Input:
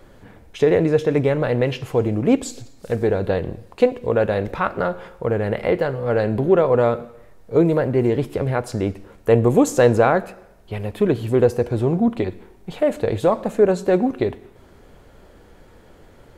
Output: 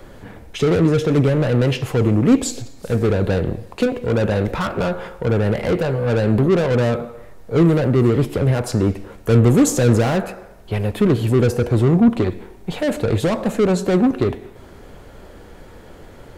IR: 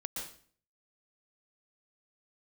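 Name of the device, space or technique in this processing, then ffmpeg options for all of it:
one-band saturation: -filter_complex "[0:a]acrossover=split=280|4600[s0][s1][s2];[s1]asoftclip=type=tanh:threshold=0.0447[s3];[s0][s3][s2]amix=inputs=3:normalize=0,volume=2.24"

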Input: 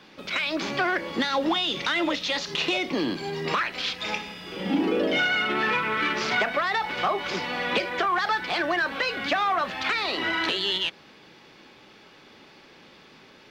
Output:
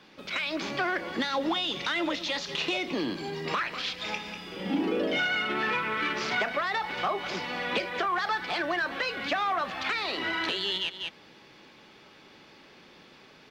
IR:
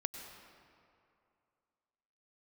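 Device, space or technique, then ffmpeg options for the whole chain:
ducked delay: -filter_complex "[0:a]asplit=3[s0][s1][s2];[s1]adelay=194,volume=0.708[s3];[s2]apad=whole_len=604334[s4];[s3][s4]sidechaincompress=threshold=0.00891:ratio=8:attack=20:release=137[s5];[s0][s5]amix=inputs=2:normalize=0,volume=0.631"

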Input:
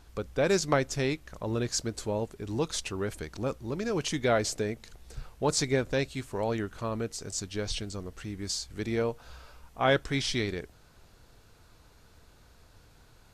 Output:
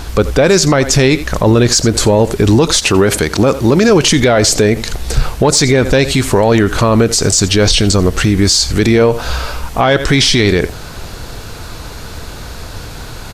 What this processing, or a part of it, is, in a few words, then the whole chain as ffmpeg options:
mastering chain: -filter_complex "[0:a]asettb=1/sr,asplit=3[s0][s1][s2];[s0]atrim=end=2.794[s3];[s1]atrim=start=2.79:end=3.89,asetpts=PTS-STARTPTS,afade=t=in:d=0.004:c=qsin,afade=t=out:st=1.096:d=0.004:c=qsin,highpass=f=120:p=1[s4];[s2]atrim=start=3.886[s5];[s3][s4]acrossfade=d=0.004:c1=hsin:c2=qsin[s6];[s6][s5]acrossfade=d=0.004:c1=qsin:c2=hsin,equalizer=f=4400:t=o:w=0.77:g=1.5,aecho=1:1:84:0.075,acompressor=threshold=0.0355:ratio=2.5,asoftclip=type=tanh:threshold=0.112,alimiter=level_in=35.5:limit=0.891:release=50:level=0:latency=1,volume=0.891"

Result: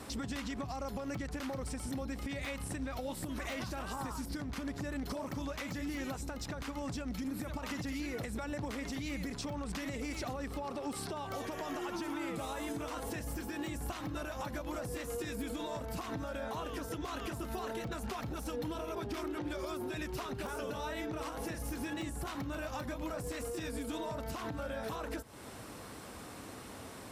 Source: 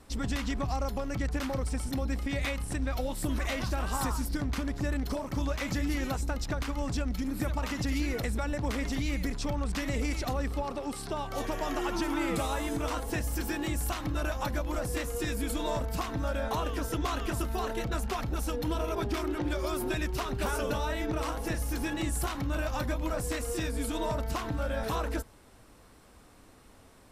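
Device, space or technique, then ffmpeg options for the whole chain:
podcast mastering chain: -af "highpass=92,deesser=0.9,acompressor=threshold=0.00631:ratio=4,alimiter=level_in=6.31:limit=0.0631:level=0:latency=1:release=170,volume=0.158,volume=3.35" -ar 44100 -c:a libmp3lame -b:a 96k

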